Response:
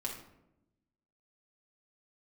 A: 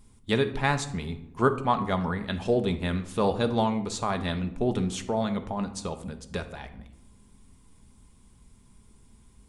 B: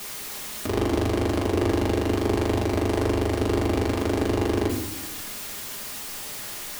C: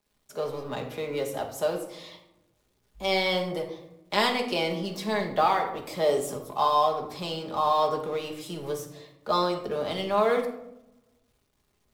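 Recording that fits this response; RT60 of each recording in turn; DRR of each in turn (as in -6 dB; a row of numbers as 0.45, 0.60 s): B; 0.90, 0.85, 0.90 s; 7.0, -3.5, 1.5 dB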